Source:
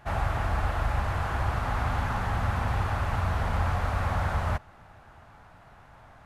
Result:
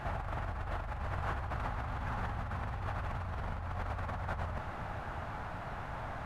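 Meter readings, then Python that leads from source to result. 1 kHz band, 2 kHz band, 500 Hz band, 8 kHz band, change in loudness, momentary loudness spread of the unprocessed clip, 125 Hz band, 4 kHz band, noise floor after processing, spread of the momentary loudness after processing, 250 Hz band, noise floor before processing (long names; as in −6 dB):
−8.5 dB, −8.5 dB, −7.5 dB, below −10 dB, −10.5 dB, 1 LU, −10.0 dB, −10.5 dB, −42 dBFS, 4 LU, −8.0 dB, −53 dBFS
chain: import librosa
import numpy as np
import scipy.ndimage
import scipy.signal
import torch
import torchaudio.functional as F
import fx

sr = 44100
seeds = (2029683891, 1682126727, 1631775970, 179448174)

y = fx.high_shelf(x, sr, hz=4900.0, db=-9.0)
y = fx.over_compress(y, sr, threshold_db=-38.0, ratio=-1.0)
y = F.gain(torch.from_numpy(y), 1.0).numpy()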